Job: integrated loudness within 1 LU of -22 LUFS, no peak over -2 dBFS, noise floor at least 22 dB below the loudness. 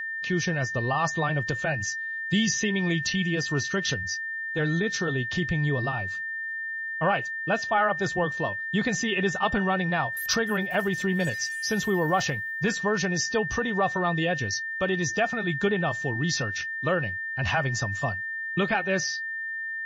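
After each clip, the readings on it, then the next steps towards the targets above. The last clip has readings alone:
ticks 37/s; steady tone 1800 Hz; tone level -30 dBFS; loudness -26.5 LUFS; peak -12.5 dBFS; loudness target -22.0 LUFS
-> de-click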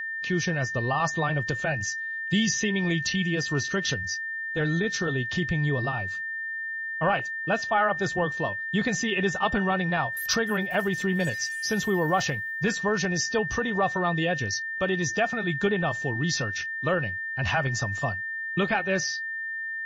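ticks 0/s; steady tone 1800 Hz; tone level -30 dBFS
-> notch 1800 Hz, Q 30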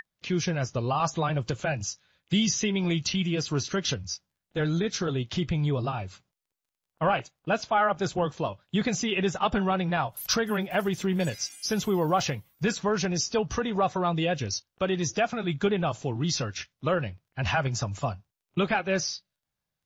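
steady tone none; loudness -28.0 LUFS; peak -14.0 dBFS; loudness target -22.0 LUFS
-> gain +6 dB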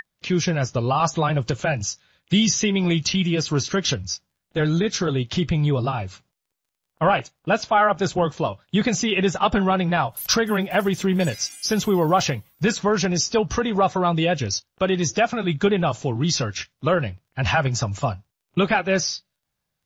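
loudness -22.0 LUFS; peak -8.0 dBFS; noise floor -80 dBFS

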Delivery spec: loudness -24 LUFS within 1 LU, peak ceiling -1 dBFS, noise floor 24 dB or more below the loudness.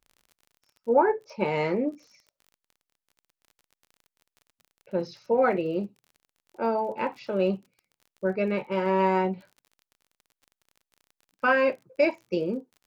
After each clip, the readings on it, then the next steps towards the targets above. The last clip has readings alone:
ticks 35/s; loudness -27.0 LUFS; peak -8.5 dBFS; loudness target -24.0 LUFS
-> de-click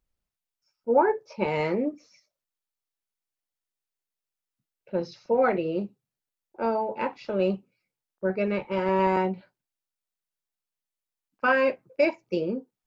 ticks 0.078/s; loudness -27.0 LUFS; peak -8.5 dBFS; loudness target -24.0 LUFS
-> gain +3 dB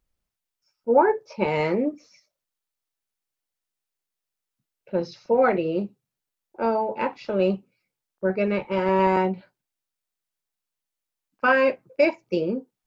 loudness -24.0 LUFS; peak -5.5 dBFS; noise floor -86 dBFS

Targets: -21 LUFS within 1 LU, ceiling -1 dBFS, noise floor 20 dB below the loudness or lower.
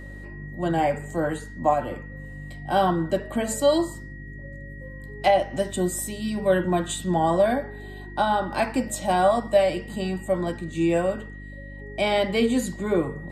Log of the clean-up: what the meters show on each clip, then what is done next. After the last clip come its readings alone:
hum 50 Hz; harmonics up to 300 Hz; hum level -37 dBFS; steady tone 1900 Hz; tone level -44 dBFS; loudness -24.5 LUFS; peak -7.5 dBFS; loudness target -21.0 LUFS
-> de-hum 50 Hz, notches 6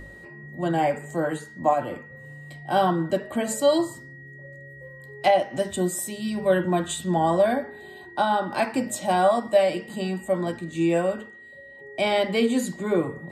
hum none; steady tone 1900 Hz; tone level -44 dBFS
-> notch 1900 Hz, Q 30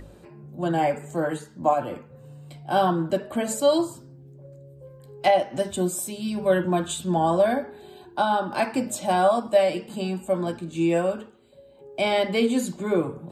steady tone none; loudness -24.5 LUFS; peak -7.5 dBFS; loudness target -21.0 LUFS
-> gain +3.5 dB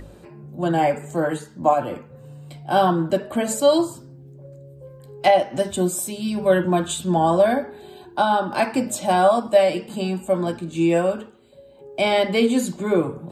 loudness -21.0 LUFS; peak -4.0 dBFS; noise floor -46 dBFS

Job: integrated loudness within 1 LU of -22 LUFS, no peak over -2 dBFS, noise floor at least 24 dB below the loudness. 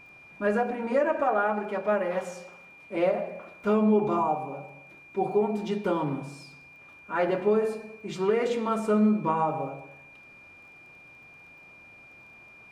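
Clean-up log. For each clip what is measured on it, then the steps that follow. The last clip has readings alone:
ticks 19/s; steady tone 2400 Hz; tone level -49 dBFS; loudness -27.0 LUFS; peak -13.0 dBFS; loudness target -22.0 LUFS
-> de-click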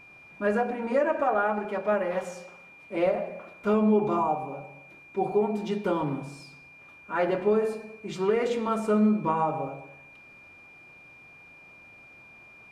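ticks 0/s; steady tone 2400 Hz; tone level -49 dBFS
-> notch 2400 Hz, Q 30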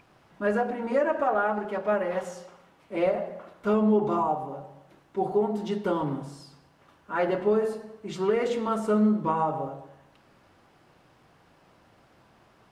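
steady tone none; loudness -27.0 LUFS; peak -13.0 dBFS; loudness target -22.0 LUFS
-> gain +5 dB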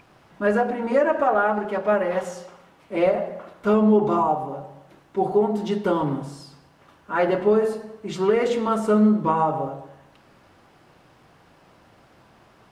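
loudness -22.0 LUFS; peak -8.0 dBFS; noise floor -56 dBFS

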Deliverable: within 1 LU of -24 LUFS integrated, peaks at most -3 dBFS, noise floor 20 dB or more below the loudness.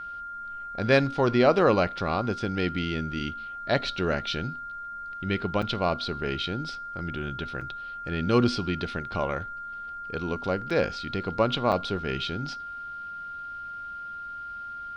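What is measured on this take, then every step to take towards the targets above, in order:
dropouts 4; longest dropout 5.2 ms; steady tone 1400 Hz; tone level -35 dBFS; loudness -28.5 LUFS; peak -8.0 dBFS; loudness target -24.0 LUFS
-> interpolate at 5.62/7.61/10.7/11.72, 5.2 ms; notch 1400 Hz, Q 30; gain +4.5 dB

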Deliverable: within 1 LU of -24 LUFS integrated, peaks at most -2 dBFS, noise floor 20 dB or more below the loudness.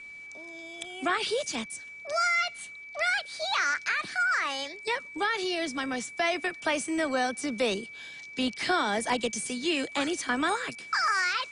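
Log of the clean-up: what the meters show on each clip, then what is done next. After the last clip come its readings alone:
steady tone 2300 Hz; tone level -42 dBFS; loudness -28.5 LUFS; peak -15.0 dBFS; loudness target -24.0 LUFS
-> notch 2300 Hz, Q 30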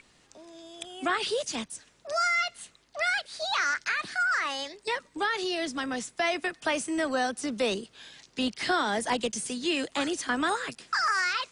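steady tone none; loudness -29.0 LUFS; peak -15.5 dBFS; loudness target -24.0 LUFS
-> gain +5 dB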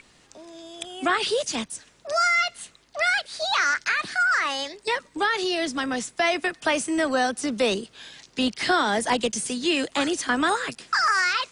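loudness -24.0 LUFS; peak -10.5 dBFS; noise floor -58 dBFS

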